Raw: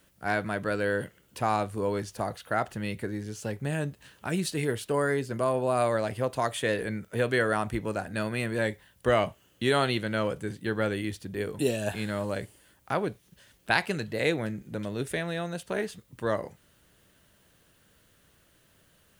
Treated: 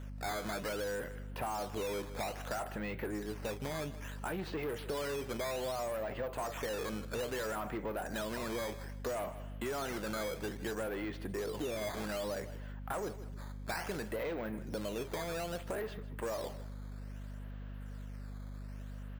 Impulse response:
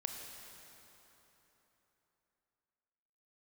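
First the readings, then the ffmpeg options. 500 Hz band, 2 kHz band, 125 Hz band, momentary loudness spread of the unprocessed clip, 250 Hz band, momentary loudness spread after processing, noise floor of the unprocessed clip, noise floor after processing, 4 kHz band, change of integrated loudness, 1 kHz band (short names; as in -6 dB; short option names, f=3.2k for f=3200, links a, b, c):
-8.5 dB, -11.0 dB, -10.0 dB, 9 LU, -9.5 dB, 10 LU, -64 dBFS, -44 dBFS, -7.5 dB, -9.5 dB, -9.0 dB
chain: -filter_complex "[0:a]asoftclip=type=hard:threshold=-22.5dB,asplit=2[a][b];[b]highpass=f=720:p=1,volume=20dB,asoftclip=type=tanh:threshold=-22.5dB[c];[a][c]amix=inputs=2:normalize=0,lowpass=f=1.1k:p=1,volume=-6dB,adynamicsmooth=sensitivity=6:basefreq=3.8k,lowshelf=f=160:g=-11,acrusher=samples=9:mix=1:aa=0.000001:lfo=1:lforange=14.4:lforate=0.61,aecho=1:1:157|314:0.112|0.0303,aeval=exprs='val(0)+0.00794*(sin(2*PI*50*n/s)+sin(2*PI*2*50*n/s)/2+sin(2*PI*3*50*n/s)/3+sin(2*PI*4*50*n/s)/4+sin(2*PI*5*50*n/s)/5)':c=same,acompressor=threshold=-34dB:ratio=6,volume=-1dB"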